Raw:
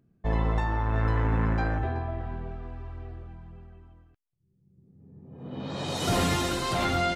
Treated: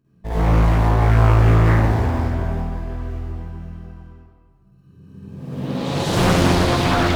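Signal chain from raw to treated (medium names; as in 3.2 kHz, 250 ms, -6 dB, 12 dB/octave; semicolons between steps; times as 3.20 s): in parallel at -8 dB: sample-and-hold 32×; on the sum: reverberation RT60 2.0 s, pre-delay 46 ms, DRR -11.5 dB; loudspeaker Doppler distortion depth 0.84 ms; trim -3.5 dB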